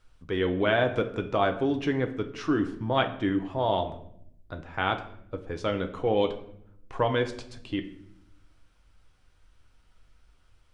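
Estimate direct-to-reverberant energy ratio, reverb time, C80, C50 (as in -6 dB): 5.5 dB, 0.70 s, 15.0 dB, 12.0 dB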